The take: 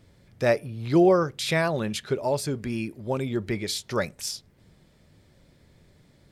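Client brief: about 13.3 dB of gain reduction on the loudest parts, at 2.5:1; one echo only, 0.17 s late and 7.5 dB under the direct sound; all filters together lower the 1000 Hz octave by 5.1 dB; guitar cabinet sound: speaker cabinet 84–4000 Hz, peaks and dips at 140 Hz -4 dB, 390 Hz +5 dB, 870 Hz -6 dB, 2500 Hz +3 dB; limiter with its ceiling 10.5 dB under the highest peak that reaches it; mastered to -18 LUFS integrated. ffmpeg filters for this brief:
-af "equalizer=f=1k:t=o:g=-4.5,acompressor=threshold=-36dB:ratio=2.5,alimiter=level_in=9.5dB:limit=-24dB:level=0:latency=1,volume=-9.5dB,highpass=84,equalizer=f=140:t=q:w=4:g=-4,equalizer=f=390:t=q:w=4:g=5,equalizer=f=870:t=q:w=4:g=-6,equalizer=f=2.5k:t=q:w=4:g=3,lowpass=f=4k:w=0.5412,lowpass=f=4k:w=1.3066,aecho=1:1:170:0.422,volume=23dB"

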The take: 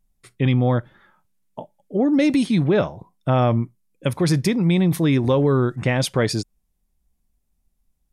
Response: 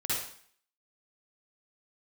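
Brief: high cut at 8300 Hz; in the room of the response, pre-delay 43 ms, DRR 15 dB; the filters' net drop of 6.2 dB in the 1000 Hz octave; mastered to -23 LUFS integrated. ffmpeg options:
-filter_complex "[0:a]lowpass=8.3k,equalizer=f=1k:t=o:g=-9,asplit=2[a][b];[1:a]atrim=start_sample=2205,adelay=43[c];[b][c]afir=irnorm=-1:irlink=0,volume=-21.5dB[d];[a][d]amix=inputs=2:normalize=0,volume=-2dB"

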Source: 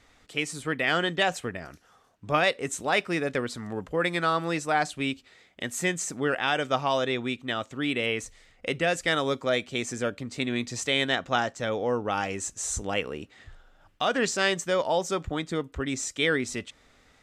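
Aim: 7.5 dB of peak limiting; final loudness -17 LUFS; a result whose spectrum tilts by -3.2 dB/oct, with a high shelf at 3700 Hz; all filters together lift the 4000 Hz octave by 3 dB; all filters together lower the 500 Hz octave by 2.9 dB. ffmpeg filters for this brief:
-af "equalizer=f=500:t=o:g=-3.5,highshelf=f=3.7k:g=-3.5,equalizer=f=4k:t=o:g=6,volume=13.5dB,alimiter=limit=-4dB:level=0:latency=1"

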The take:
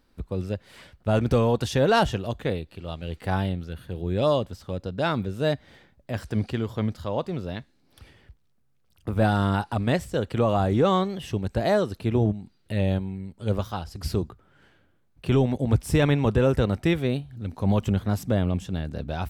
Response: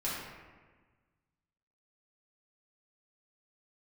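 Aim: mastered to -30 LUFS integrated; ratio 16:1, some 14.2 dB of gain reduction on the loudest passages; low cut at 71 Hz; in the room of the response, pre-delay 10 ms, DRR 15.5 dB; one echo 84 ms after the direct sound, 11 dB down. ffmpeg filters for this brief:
-filter_complex "[0:a]highpass=71,acompressor=threshold=-30dB:ratio=16,aecho=1:1:84:0.282,asplit=2[a][b];[1:a]atrim=start_sample=2205,adelay=10[c];[b][c]afir=irnorm=-1:irlink=0,volume=-21dB[d];[a][d]amix=inputs=2:normalize=0,volume=6.5dB"

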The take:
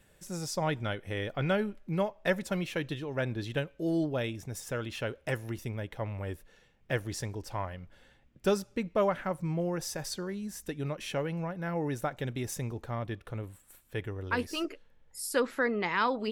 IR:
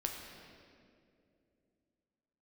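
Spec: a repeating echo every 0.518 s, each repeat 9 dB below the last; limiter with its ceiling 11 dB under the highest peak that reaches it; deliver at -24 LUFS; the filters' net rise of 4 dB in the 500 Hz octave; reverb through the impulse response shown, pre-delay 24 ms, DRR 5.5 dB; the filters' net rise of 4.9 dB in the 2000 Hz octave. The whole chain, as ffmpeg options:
-filter_complex "[0:a]equalizer=f=500:t=o:g=4.5,equalizer=f=2k:t=o:g=6,alimiter=limit=-21.5dB:level=0:latency=1,aecho=1:1:518|1036|1554|2072:0.355|0.124|0.0435|0.0152,asplit=2[a][b];[1:a]atrim=start_sample=2205,adelay=24[c];[b][c]afir=irnorm=-1:irlink=0,volume=-7dB[d];[a][d]amix=inputs=2:normalize=0,volume=8dB"

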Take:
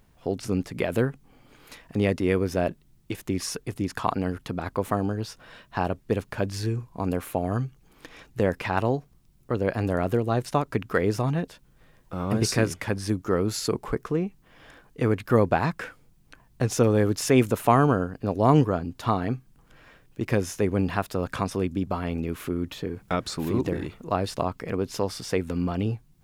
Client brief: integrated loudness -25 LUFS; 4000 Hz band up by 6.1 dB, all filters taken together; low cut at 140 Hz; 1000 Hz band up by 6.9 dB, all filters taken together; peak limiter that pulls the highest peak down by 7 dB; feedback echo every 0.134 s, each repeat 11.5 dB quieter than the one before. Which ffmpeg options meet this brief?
-af "highpass=140,equalizer=f=1k:t=o:g=8.5,equalizer=f=4k:t=o:g=7.5,alimiter=limit=-7.5dB:level=0:latency=1,aecho=1:1:134|268|402:0.266|0.0718|0.0194,volume=0.5dB"

